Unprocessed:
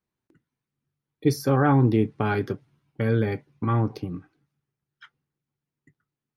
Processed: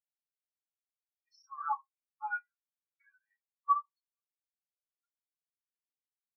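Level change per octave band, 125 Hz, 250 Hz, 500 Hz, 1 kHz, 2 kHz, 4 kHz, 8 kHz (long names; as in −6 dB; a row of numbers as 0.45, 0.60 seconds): below −40 dB, below −40 dB, below −40 dB, −4.5 dB, −9.0 dB, below −25 dB, can't be measured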